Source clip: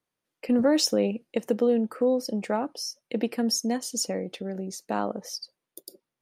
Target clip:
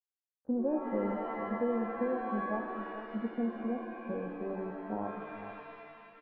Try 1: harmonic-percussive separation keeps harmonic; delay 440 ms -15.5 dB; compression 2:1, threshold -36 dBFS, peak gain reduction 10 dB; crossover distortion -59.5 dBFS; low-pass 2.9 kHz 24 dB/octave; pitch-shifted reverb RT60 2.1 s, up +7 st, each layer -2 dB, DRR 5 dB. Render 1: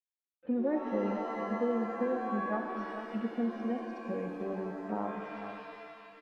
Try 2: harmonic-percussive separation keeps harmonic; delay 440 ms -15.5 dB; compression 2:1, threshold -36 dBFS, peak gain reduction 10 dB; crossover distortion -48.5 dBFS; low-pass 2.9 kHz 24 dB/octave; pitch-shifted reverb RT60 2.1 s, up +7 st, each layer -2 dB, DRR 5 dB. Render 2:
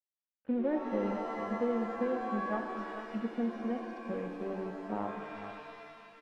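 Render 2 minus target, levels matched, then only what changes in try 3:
4 kHz band +6.5 dB
change: low-pass 940 Hz 24 dB/octave

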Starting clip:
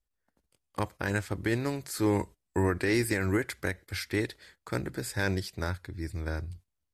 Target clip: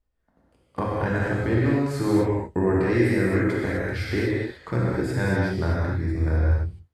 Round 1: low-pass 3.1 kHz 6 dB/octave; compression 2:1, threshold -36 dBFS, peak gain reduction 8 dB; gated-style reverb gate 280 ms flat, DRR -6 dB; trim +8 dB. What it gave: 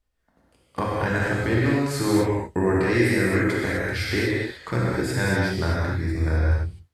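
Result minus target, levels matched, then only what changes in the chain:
4 kHz band +7.0 dB
change: low-pass 1 kHz 6 dB/octave

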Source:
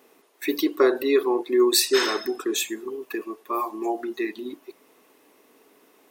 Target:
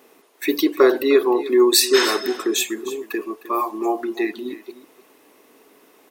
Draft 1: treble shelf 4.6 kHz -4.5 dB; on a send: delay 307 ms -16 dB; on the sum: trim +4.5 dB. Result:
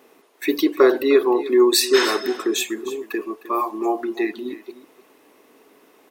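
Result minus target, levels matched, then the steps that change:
8 kHz band -3.0 dB
remove: treble shelf 4.6 kHz -4.5 dB

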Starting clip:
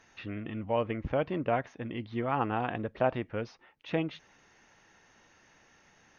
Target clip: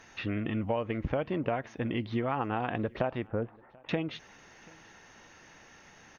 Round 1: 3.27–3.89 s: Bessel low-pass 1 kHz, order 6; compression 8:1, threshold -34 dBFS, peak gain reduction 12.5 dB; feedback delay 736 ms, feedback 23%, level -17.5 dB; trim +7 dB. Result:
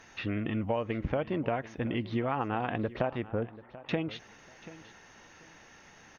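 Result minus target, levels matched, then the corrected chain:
echo-to-direct +9 dB
3.27–3.89 s: Bessel low-pass 1 kHz, order 6; compression 8:1, threshold -34 dBFS, peak gain reduction 12.5 dB; feedback delay 736 ms, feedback 23%, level -26.5 dB; trim +7 dB

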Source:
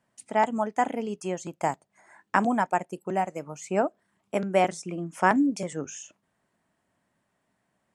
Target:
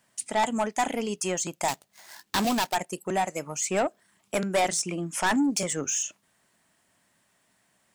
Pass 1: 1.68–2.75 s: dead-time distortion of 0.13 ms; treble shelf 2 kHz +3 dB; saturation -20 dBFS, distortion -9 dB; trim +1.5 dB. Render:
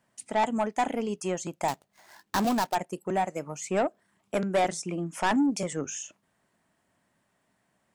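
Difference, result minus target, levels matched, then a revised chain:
4 kHz band -4.5 dB
1.68–2.75 s: dead-time distortion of 0.13 ms; treble shelf 2 kHz +14 dB; saturation -20 dBFS, distortion -6 dB; trim +1.5 dB

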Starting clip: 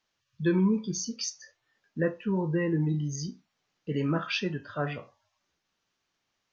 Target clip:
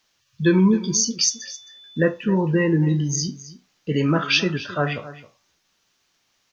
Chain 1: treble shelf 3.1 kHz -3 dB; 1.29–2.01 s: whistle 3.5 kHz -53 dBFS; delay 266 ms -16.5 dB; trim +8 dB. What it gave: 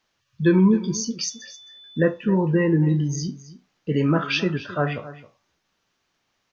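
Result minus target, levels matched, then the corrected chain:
8 kHz band -7.5 dB
treble shelf 3.1 kHz +8 dB; 1.29–2.01 s: whistle 3.5 kHz -53 dBFS; delay 266 ms -16.5 dB; trim +8 dB

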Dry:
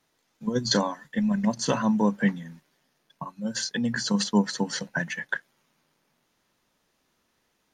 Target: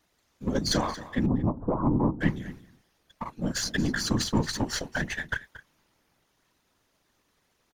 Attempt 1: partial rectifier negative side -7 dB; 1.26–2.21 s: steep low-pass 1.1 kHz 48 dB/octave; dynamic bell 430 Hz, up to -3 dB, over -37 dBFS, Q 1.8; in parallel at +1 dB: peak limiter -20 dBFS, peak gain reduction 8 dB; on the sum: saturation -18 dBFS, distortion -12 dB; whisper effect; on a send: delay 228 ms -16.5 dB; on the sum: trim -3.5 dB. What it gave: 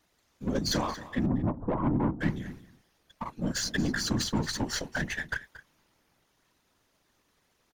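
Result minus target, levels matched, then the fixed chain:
saturation: distortion +16 dB
partial rectifier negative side -7 dB; 1.26–2.21 s: steep low-pass 1.1 kHz 48 dB/octave; dynamic bell 430 Hz, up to -3 dB, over -37 dBFS, Q 1.8; in parallel at +1 dB: peak limiter -20 dBFS, peak gain reduction 8 dB; on the sum: saturation -7 dBFS, distortion -28 dB; whisper effect; on a send: delay 228 ms -16.5 dB; on the sum: trim -3.5 dB

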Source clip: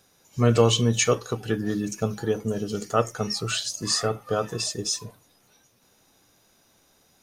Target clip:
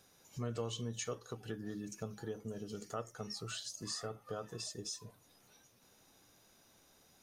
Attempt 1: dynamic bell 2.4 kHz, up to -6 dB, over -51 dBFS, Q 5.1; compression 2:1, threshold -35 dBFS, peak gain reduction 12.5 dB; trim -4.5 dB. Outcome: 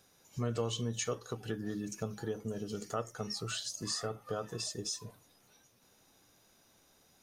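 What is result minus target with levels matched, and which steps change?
compression: peak gain reduction -5 dB
change: compression 2:1, threshold -45 dBFS, peak gain reduction 17.5 dB

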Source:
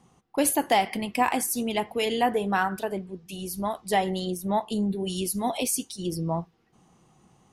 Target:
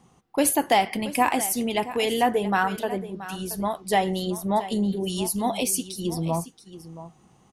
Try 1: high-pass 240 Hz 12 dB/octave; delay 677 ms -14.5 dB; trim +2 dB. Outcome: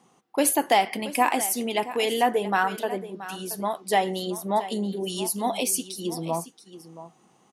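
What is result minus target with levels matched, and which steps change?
250 Hz band -3.0 dB
remove: high-pass 240 Hz 12 dB/octave

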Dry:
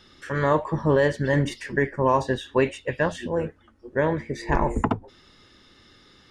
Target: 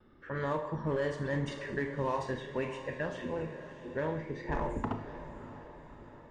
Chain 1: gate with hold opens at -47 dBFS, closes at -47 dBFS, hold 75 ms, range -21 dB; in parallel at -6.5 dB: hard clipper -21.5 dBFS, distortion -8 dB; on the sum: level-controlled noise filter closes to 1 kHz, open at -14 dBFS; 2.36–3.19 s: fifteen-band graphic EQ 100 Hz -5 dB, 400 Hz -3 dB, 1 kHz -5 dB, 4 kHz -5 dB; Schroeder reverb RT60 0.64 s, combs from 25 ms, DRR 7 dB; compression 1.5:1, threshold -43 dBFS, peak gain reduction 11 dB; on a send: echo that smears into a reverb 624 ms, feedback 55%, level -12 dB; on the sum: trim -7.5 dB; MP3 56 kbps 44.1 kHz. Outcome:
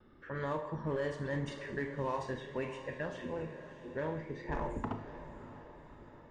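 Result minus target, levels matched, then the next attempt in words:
compression: peak gain reduction +3 dB
gate with hold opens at -47 dBFS, closes at -47 dBFS, hold 75 ms, range -21 dB; in parallel at -6.5 dB: hard clipper -21.5 dBFS, distortion -8 dB; on the sum: level-controlled noise filter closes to 1 kHz, open at -14 dBFS; 2.36–3.19 s: fifteen-band graphic EQ 100 Hz -5 dB, 400 Hz -3 dB, 1 kHz -5 dB, 4 kHz -5 dB; Schroeder reverb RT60 0.64 s, combs from 25 ms, DRR 7 dB; compression 1.5:1, threshold -33.5 dBFS, peak gain reduction 7.5 dB; on a send: echo that smears into a reverb 624 ms, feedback 55%, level -12 dB; on the sum: trim -7.5 dB; MP3 56 kbps 44.1 kHz

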